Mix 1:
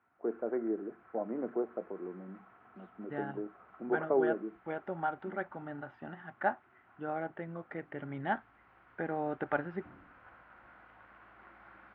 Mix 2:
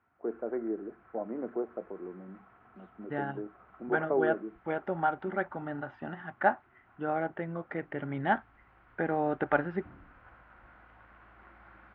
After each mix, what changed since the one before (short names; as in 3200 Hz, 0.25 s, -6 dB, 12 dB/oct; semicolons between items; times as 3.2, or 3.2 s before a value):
second voice +5.5 dB; background: remove HPF 180 Hz 6 dB/oct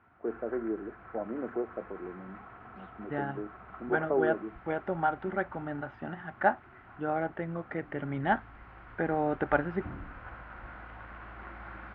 background +10.0 dB; master: add low shelf 140 Hz +3.5 dB